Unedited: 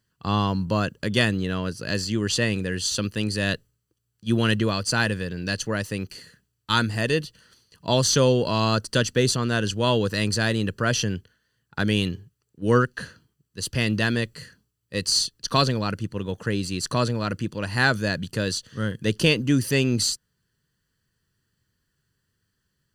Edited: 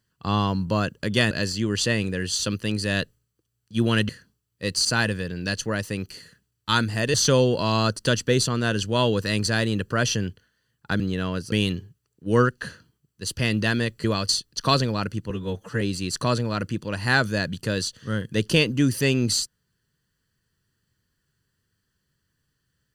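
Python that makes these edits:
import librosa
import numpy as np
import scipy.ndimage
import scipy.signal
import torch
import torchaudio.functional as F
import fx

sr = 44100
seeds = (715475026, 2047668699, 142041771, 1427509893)

y = fx.edit(x, sr, fx.move(start_s=1.31, length_s=0.52, to_s=11.88),
    fx.swap(start_s=4.61, length_s=0.25, other_s=14.4, other_length_s=0.76),
    fx.cut(start_s=7.15, length_s=0.87),
    fx.stretch_span(start_s=16.17, length_s=0.34, factor=1.5), tone=tone)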